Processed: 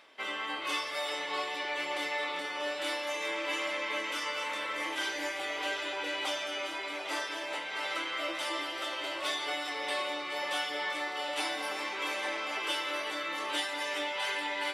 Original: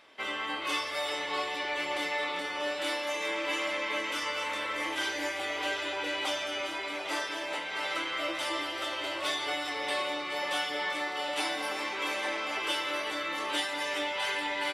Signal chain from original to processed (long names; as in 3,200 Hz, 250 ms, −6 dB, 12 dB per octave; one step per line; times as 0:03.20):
low-shelf EQ 130 Hz −11.5 dB
reversed playback
upward compression, threshold −39 dBFS
reversed playback
level −1.5 dB